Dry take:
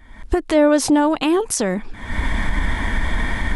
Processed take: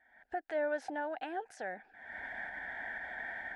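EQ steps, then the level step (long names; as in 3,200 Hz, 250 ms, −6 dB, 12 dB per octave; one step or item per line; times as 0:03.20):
pair of resonant band-passes 1,100 Hz, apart 1.1 octaves
−7.5 dB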